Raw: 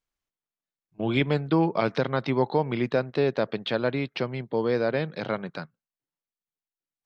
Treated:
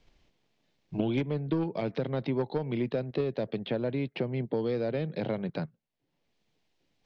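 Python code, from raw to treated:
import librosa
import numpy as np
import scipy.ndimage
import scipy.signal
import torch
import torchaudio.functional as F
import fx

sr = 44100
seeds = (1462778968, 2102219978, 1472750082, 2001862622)

p1 = fx.peak_eq(x, sr, hz=1300.0, db=-12.5, octaves=1.1)
p2 = fx.level_steps(p1, sr, step_db=22)
p3 = p1 + (p2 * 10.0 ** (-1.0 / 20.0))
p4 = fx.air_absorb(p3, sr, metres=210.0)
p5 = 10.0 ** (-14.0 / 20.0) * np.tanh(p4 / 10.0 ** (-14.0 / 20.0))
p6 = fx.band_squash(p5, sr, depth_pct=100)
y = p6 * 10.0 ** (-4.0 / 20.0)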